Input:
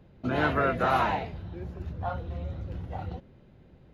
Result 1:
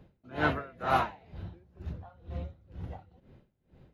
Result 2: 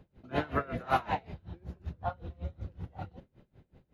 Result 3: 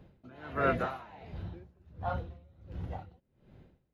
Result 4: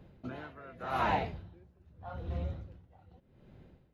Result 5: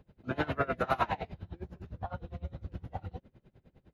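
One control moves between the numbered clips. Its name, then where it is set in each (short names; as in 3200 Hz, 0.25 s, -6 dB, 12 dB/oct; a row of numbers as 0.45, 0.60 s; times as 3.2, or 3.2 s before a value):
dB-linear tremolo, rate: 2.1, 5.3, 1.4, 0.84, 9.8 Hz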